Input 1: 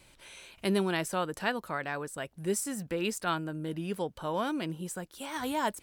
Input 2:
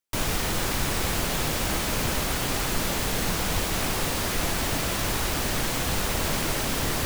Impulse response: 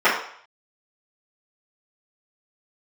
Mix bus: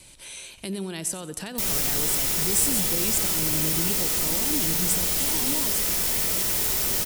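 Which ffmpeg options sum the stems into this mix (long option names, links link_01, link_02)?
-filter_complex "[0:a]lowpass=frequency=11000:width=0.5412,lowpass=frequency=11000:width=1.3066,lowshelf=frequency=390:gain=5,alimiter=level_in=1.5dB:limit=-24dB:level=0:latency=1:release=134,volume=-1.5dB,volume=2.5dB,asplit=2[link_01][link_02];[link_02]volume=-15dB[link_03];[1:a]adelay=1450,volume=-9.5dB,asplit=3[link_04][link_05][link_06];[link_05]volume=-15.5dB[link_07];[link_06]volume=-4dB[link_08];[2:a]atrim=start_sample=2205[link_09];[link_07][link_09]afir=irnorm=-1:irlink=0[link_10];[link_03][link_08]amix=inputs=2:normalize=0,aecho=0:1:90|180|270|360|450|540:1|0.41|0.168|0.0689|0.0283|0.0116[link_11];[link_01][link_04][link_10][link_11]amix=inputs=4:normalize=0,equalizer=frequency=1400:width=1.5:gain=-3,acrossover=split=450|3000[link_12][link_13][link_14];[link_13]acompressor=threshold=-43dB:ratio=2.5[link_15];[link_12][link_15][link_14]amix=inputs=3:normalize=0,crystalizer=i=3.5:c=0"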